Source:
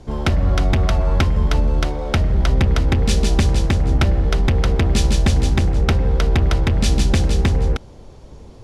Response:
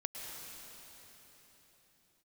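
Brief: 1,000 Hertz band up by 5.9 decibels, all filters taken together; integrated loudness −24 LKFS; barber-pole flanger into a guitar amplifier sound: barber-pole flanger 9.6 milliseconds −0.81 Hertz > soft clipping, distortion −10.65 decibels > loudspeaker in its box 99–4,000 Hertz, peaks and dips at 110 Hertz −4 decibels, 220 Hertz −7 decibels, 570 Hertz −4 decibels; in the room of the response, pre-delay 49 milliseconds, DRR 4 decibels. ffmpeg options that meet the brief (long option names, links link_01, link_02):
-filter_complex "[0:a]equalizer=frequency=1000:width_type=o:gain=8.5,asplit=2[link_01][link_02];[1:a]atrim=start_sample=2205,adelay=49[link_03];[link_02][link_03]afir=irnorm=-1:irlink=0,volume=-4.5dB[link_04];[link_01][link_04]amix=inputs=2:normalize=0,asplit=2[link_05][link_06];[link_06]adelay=9.6,afreqshift=-0.81[link_07];[link_05][link_07]amix=inputs=2:normalize=1,asoftclip=threshold=-16.5dB,highpass=99,equalizer=frequency=110:width_type=q:width=4:gain=-4,equalizer=frequency=220:width_type=q:width=4:gain=-7,equalizer=frequency=570:width_type=q:width=4:gain=-4,lowpass=frequency=4000:width=0.5412,lowpass=frequency=4000:width=1.3066,volume=4.5dB"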